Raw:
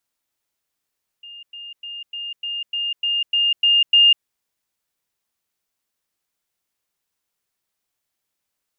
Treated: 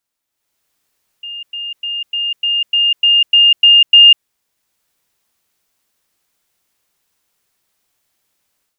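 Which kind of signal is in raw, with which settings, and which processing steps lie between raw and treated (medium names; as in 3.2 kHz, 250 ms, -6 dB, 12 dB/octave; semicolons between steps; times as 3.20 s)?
level ladder 2.82 kHz -36 dBFS, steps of 3 dB, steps 10, 0.20 s 0.10 s
level rider gain up to 11.5 dB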